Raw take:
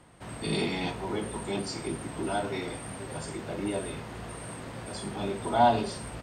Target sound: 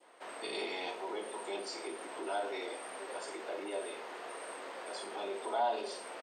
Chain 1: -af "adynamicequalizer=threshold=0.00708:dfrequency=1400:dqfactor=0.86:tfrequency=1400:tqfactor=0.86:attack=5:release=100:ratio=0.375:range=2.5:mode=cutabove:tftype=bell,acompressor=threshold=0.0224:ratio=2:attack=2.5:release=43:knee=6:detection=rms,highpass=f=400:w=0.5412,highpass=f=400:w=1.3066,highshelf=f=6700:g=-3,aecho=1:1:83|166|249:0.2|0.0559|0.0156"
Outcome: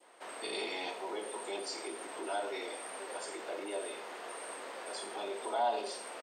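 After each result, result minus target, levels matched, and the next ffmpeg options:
echo 27 ms late; 8 kHz band +3.5 dB
-af "adynamicequalizer=threshold=0.00708:dfrequency=1400:dqfactor=0.86:tfrequency=1400:tqfactor=0.86:attack=5:release=100:ratio=0.375:range=2.5:mode=cutabove:tftype=bell,acompressor=threshold=0.0224:ratio=2:attack=2.5:release=43:knee=6:detection=rms,highpass=f=400:w=0.5412,highpass=f=400:w=1.3066,highshelf=f=6700:g=-3,aecho=1:1:56|112|168:0.2|0.0559|0.0156"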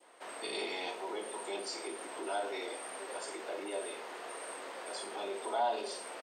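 8 kHz band +4.0 dB
-af "adynamicequalizer=threshold=0.00708:dfrequency=1400:dqfactor=0.86:tfrequency=1400:tqfactor=0.86:attack=5:release=100:ratio=0.375:range=2.5:mode=cutabove:tftype=bell,acompressor=threshold=0.0224:ratio=2:attack=2.5:release=43:knee=6:detection=rms,highpass=f=400:w=0.5412,highpass=f=400:w=1.3066,highshelf=f=6700:g=-10,aecho=1:1:56|112|168:0.2|0.0559|0.0156"

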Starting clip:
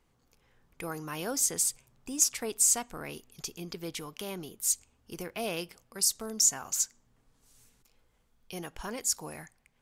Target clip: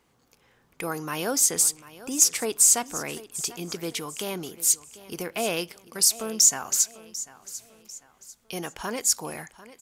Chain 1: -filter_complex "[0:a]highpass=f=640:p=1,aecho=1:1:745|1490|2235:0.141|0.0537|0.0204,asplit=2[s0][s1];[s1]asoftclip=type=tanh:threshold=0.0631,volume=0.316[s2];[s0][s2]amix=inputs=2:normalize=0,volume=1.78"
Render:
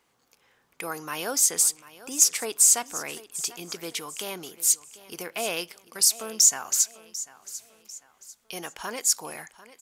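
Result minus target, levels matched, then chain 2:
125 Hz band -9.0 dB
-filter_complex "[0:a]highpass=f=170:p=1,aecho=1:1:745|1490|2235:0.141|0.0537|0.0204,asplit=2[s0][s1];[s1]asoftclip=type=tanh:threshold=0.0631,volume=0.316[s2];[s0][s2]amix=inputs=2:normalize=0,volume=1.78"

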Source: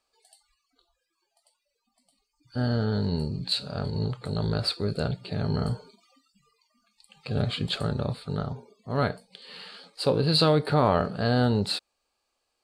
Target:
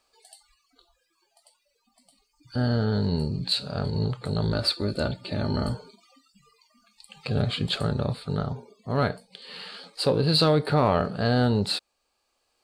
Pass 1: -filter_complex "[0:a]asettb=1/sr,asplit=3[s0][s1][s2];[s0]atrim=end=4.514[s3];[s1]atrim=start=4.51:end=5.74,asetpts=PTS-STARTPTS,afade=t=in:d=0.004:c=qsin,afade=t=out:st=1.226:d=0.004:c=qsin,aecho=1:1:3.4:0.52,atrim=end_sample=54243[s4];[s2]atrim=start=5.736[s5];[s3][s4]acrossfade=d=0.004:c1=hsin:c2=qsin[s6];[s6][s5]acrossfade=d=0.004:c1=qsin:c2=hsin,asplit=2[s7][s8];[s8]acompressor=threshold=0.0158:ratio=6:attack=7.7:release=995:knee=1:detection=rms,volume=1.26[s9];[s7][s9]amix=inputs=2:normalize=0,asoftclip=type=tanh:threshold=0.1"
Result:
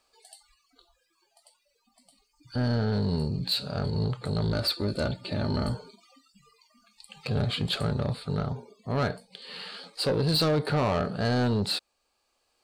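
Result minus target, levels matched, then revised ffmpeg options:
saturation: distortion +15 dB
-filter_complex "[0:a]asettb=1/sr,asplit=3[s0][s1][s2];[s0]atrim=end=4.514[s3];[s1]atrim=start=4.51:end=5.74,asetpts=PTS-STARTPTS,afade=t=in:d=0.004:c=qsin,afade=t=out:st=1.226:d=0.004:c=qsin,aecho=1:1:3.4:0.52,atrim=end_sample=54243[s4];[s2]atrim=start=5.736[s5];[s3][s4]acrossfade=d=0.004:c1=hsin:c2=qsin[s6];[s6][s5]acrossfade=d=0.004:c1=qsin:c2=hsin,asplit=2[s7][s8];[s8]acompressor=threshold=0.0158:ratio=6:attack=7.7:release=995:knee=1:detection=rms,volume=1.26[s9];[s7][s9]amix=inputs=2:normalize=0,asoftclip=type=tanh:threshold=0.376"

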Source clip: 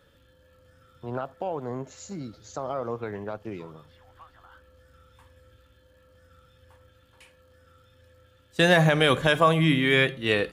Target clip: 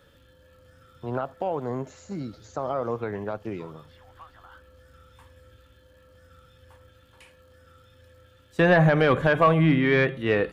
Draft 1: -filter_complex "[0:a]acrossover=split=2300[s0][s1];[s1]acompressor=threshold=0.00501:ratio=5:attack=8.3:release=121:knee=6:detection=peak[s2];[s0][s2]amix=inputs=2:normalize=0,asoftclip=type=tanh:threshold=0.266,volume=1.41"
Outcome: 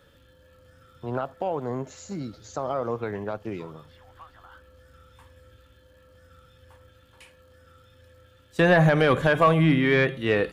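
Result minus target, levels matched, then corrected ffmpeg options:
compression: peak gain reduction -8.5 dB
-filter_complex "[0:a]acrossover=split=2300[s0][s1];[s1]acompressor=threshold=0.0015:ratio=5:attack=8.3:release=121:knee=6:detection=peak[s2];[s0][s2]amix=inputs=2:normalize=0,asoftclip=type=tanh:threshold=0.266,volume=1.41"

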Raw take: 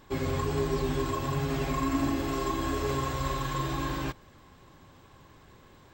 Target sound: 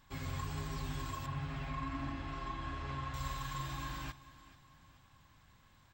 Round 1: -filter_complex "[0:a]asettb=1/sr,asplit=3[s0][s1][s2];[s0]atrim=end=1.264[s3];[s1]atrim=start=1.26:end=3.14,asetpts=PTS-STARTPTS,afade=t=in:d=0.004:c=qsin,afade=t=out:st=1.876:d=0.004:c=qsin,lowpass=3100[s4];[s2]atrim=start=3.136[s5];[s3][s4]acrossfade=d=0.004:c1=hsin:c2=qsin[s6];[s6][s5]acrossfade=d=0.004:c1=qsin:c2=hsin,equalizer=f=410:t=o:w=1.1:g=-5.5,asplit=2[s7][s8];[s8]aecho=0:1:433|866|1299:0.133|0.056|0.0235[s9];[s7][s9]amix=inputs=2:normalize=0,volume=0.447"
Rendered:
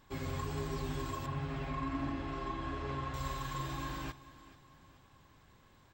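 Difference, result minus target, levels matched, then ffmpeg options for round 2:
500 Hz band +6.5 dB
-filter_complex "[0:a]asettb=1/sr,asplit=3[s0][s1][s2];[s0]atrim=end=1.264[s3];[s1]atrim=start=1.26:end=3.14,asetpts=PTS-STARTPTS,afade=t=in:d=0.004:c=qsin,afade=t=out:st=1.876:d=0.004:c=qsin,lowpass=3100[s4];[s2]atrim=start=3.136[s5];[s3][s4]acrossfade=d=0.004:c1=hsin:c2=qsin[s6];[s6][s5]acrossfade=d=0.004:c1=qsin:c2=hsin,equalizer=f=410:t=o:w=1.1:g=-16.5,asplit=2[s7][s8];[s8]aecho=0:1:433|866|1299:0.133|0.056|0.0235[s9];[s7][s9]amix=inputs=2:normalize=0,volume=0.447"

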